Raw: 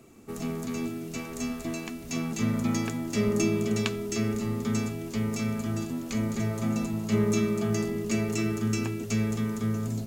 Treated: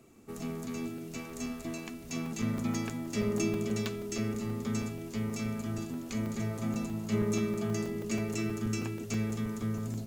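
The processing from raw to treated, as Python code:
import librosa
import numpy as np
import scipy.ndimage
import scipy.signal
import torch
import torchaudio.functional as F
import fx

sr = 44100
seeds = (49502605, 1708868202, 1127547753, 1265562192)

y = fx.buffer_crackle(x, sr, first_s=0.98, period_s=0.16, block=128, kind='zero')
y = y * librosa.db_to_amplitude(-5.0)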